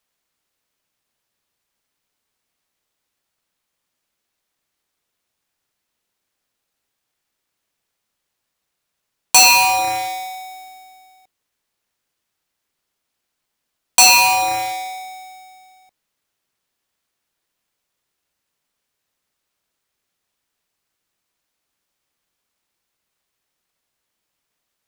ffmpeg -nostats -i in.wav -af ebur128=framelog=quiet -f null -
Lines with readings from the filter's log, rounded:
Integrated loudness:
  I:         -12.4 LUFS
  Threshold: -25.8 LUFS
Loudness range:
  LRA:        12.8 LU
  Threshold: -38.9 LUFS
  LRA low:   -29.7 LUFS
  LRA high:  -16.9 LUFS